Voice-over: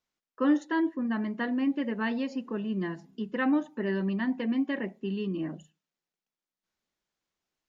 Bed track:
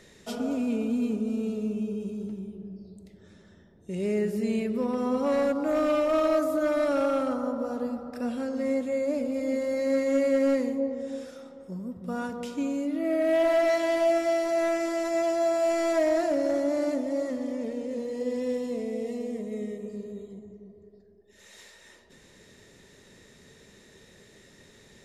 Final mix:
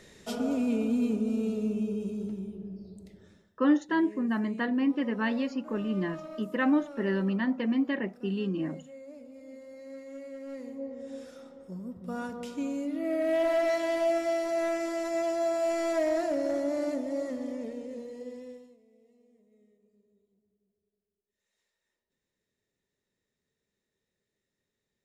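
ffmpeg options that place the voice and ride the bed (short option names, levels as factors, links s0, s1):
-filter_complex "[0:a]adelay=3200,volume=1.12[s0];[1:a]volume=5.96,afade=t=out:st=3.12:d=0.41:silence=0.112202,afade=t=in:st=10.46:d=0.97:silence=0.16788,afade=t=out:st=17.47:d=1.3:silence=0.0421697[s1];[s0][s1]amix=inputs=2:normalize=0"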